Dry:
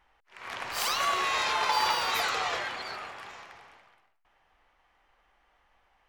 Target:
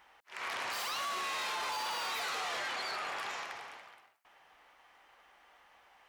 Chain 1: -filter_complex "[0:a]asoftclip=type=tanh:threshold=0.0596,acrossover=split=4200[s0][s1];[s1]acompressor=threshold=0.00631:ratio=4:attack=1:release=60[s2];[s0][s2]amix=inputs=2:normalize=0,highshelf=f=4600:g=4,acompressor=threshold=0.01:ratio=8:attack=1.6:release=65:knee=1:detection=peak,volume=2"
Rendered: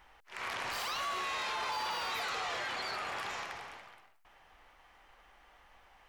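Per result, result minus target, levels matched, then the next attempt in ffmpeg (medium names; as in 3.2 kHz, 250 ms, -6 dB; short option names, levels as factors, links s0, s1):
saturation: distortion -7 dB; 250 Hz band +2.5 dB
-filter_complex "[0:a]asoftclip=type=tanh:threshold=0.0251,acrossover=split=4200[s0][s1];[s1]acompressor=threshold=0.00631:ratio=4:attack=1:release=60[s2];[s0][s2]amix=inputs=2:normalize=0,highshelf=f=4600:g=4,acompressor=threshold=0.01:ratio=8:attack=1.6:release=65:knee=1:detection=peak,volume=2"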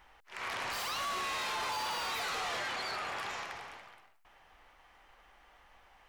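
250 Hz band +3.5 dB
-filter_complex "[0:a]asoftclip=type=tanh:threshold=0.0251,acrossover=split=4200[s0][s1];[s1]acompressor=threshold=0.00631:ratio=4:attack=1:release=60[s2];[s0][s2]amix=inputs=2:normalize=0,highpass=f=320:p=1,highshelf=f=4600:g=4,acompressor=threshold=0.01:ratio=8:attack=1.6:release=65:knee=1:detection=peak,volume=2"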